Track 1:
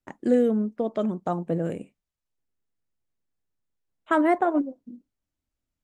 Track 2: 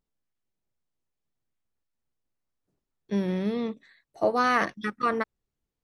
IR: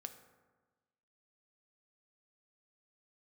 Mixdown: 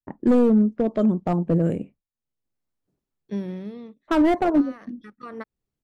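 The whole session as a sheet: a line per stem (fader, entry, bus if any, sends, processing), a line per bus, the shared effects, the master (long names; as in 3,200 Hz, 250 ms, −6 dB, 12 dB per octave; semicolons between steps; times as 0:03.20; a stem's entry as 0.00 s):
−0.5 dB, 0.00 s, no send, noise gate with hold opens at −47 dBFS; low-pass that shuts in the quiet parts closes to 970 Hz, open at −22.5 dBFS; gain into a clipping stage and back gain 19 dB
−2.0 dB, 0.20 s, no send, low-shelf EQ 370 Hz −11.5 dB; downward compressor 3 to 1, threshold −27 dBFS, peak gain reduction 6 dB; parametric band 190 Hz +5.5 dB 2.9 octaves; automatic ducking −17 dB, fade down 0.95 s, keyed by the first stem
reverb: not used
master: low-shelf EQ 390 Hz +11 dB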